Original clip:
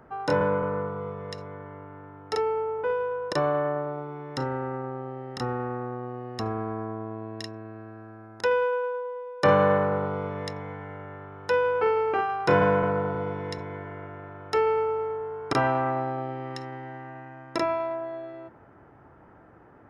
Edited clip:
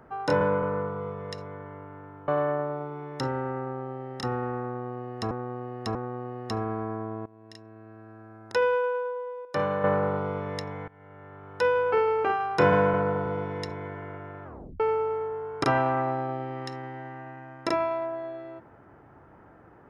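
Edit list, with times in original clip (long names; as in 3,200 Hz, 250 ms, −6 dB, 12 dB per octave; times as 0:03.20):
0:02.28–0:03.45: remove
0:05.84–0:06.48: repeat, 3 plays
0:07.15–0:08.53: fade in, from −19.5 dB
0:09.34–0:09.73: clip gain −8 dB
0:10.77–0:11.56: fade in, from −20.5 dB
0:14.33: tape stop 0.36 s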